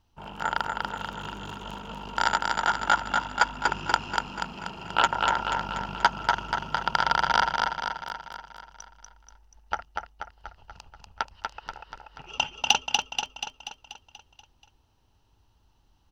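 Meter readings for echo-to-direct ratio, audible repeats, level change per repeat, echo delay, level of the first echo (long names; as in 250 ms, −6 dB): −2.0 dB, 7, −5.0 dB, 241 ms, −3.5 dB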